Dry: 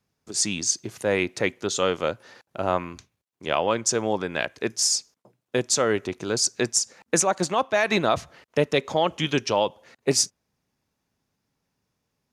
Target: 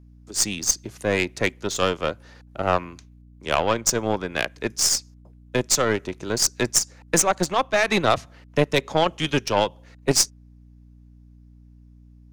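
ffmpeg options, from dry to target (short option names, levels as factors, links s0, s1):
-filter_complex "[0:a]acrossover=split=340|560|3000[s0][s1][s2][s3];[s1]asoftclip=type=tanh:threshold=0.0422[s4];[s0][s4][s2][s3]amix=inputs=4:normalize=0,aeval=exprs='0.422*(cos(1*acos(clip(val(0)/0.422,-1,1)))-cos(1*PI/2))+0.0944*(cos(2*acos(clip(val(0)/0.422,-1,1)))-cos(2*PI/2))+0.00335*(cos(6*acos(clip(val(0)/0.422,-1,1)))-cos(6*PI/2))+0.0299*(cos(7*acos(clip(val(0)/0.422,-1,1)))-cos(7*PI/2))':c=same,aeval=exprs='val(0)+0.00282*(sin(2*PI*60*n/s)+sin(2*PI*2*60*n/s)/2+sin(2*PI*3*60*n/s)/3+sin(2*PI*4*60*n/s)/4+sin(2*PI*5*60*n/s)/5)':c=same,volume=1.5"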